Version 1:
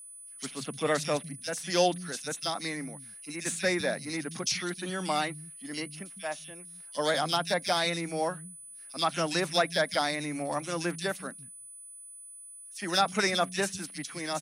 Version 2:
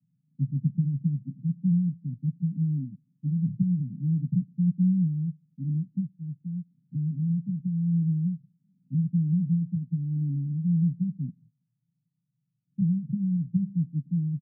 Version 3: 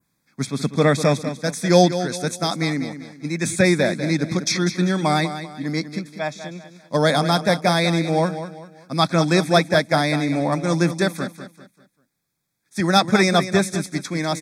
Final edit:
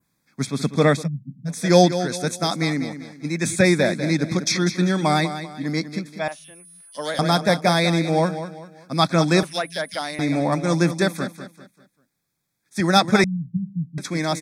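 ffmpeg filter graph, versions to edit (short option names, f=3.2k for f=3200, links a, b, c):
-filter_complex "[1:a]asplit=2[a][b];[0:a]asplit=2[c][d];[2:a]asplit=5[e][f][g][h][i];[e]atrim=end=1.08[j];[a]atrim=start=0.92:end=1.61[k];[f]atrim=start=1.45:end=6.282[l];[c]atrim=start=6.278:end=7.192[m];[g]atrim=start=7.188:end=9.432[n];[d]atrim=start=9.428:end=10.192[o];[h]atrim=start=10.188:end=13.242[p];[b]atrim=start=13.238:end=13.982[q];[i]atrim=start=13.978[r];[j][k]acrossfade=d=0.16:c1=tri:c2=tri[s];[s][l]acrossfade=d=0.16:c1=tri:c2=tri[t];[t][m]acrossfade=d=0.004:c1=hsin:c2=hsin[u];[u][n]acrossfade=d=0.004:c1=hsin:c2=hsin[v];[v][o]acrossfade=d=0.004:c1=hsin:c2=hsin[w];[w][p]acrossfade=d=0.004:c1=hsin:c2=hsin[x];[x][q]acrossfade=d=0.004:c1=hsin:c2=hsin[y];[y][r]acrossfade=d=0.004:c1=hsin:c2=hsin"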